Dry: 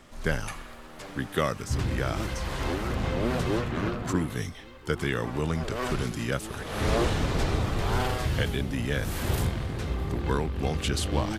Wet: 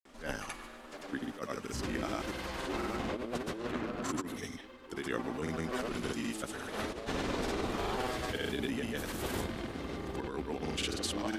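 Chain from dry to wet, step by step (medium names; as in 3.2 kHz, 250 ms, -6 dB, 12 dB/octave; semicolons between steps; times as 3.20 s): resonant low shelf 180 Hz -9.5 dB, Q 1.5; compressor with a negative ratio -29 dBFS, ratio -0.5; granulator, pitch spread up and down by 0 st; trim -4 dB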